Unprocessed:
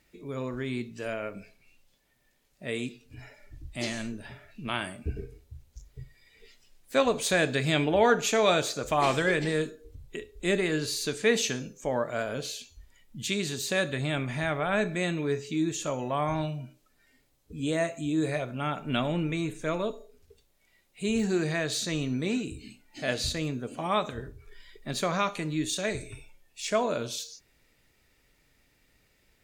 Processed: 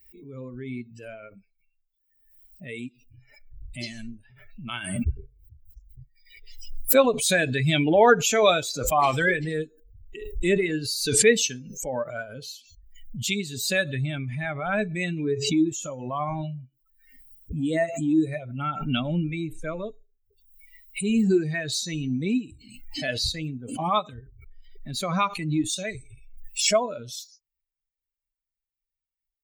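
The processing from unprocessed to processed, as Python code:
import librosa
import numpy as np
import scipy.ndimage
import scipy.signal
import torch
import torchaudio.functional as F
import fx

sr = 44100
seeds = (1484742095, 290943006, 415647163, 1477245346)

y = fx.bin_expand(x, sr, power=2.0)
y = fx.pre_swell(y, sr, db_per_s=56.0)
y = y * librosa.db_to_amplitude(8.0)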